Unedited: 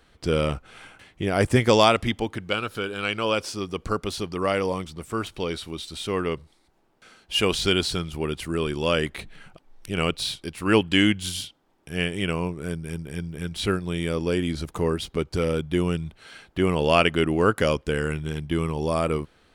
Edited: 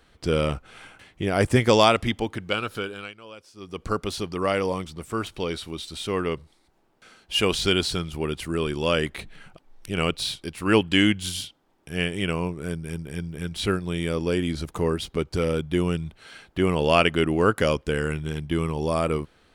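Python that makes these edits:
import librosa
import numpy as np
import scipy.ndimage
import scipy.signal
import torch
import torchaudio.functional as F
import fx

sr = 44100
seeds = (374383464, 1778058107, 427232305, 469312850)

y = fx.edit(x, sr, fx.fade_down_up(start_s=2.77, length_s=1.14, db=-19.5, fade_s=0.37), tone=tone)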